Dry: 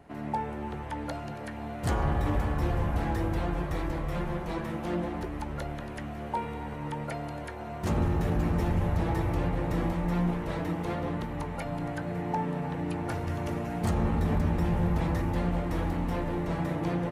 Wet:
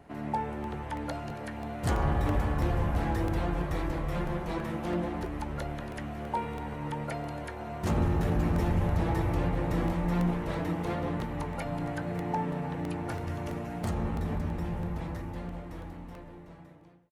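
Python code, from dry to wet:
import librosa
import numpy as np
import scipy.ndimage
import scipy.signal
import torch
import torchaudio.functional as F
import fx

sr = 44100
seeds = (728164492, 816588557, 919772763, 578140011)

y = fx.fade_out_tail(x, sr, length_s=5.14)
y = fx.buffer_crackle(y, sr, first_s=0.64, period_s=0.33, block=64, kind='repeat')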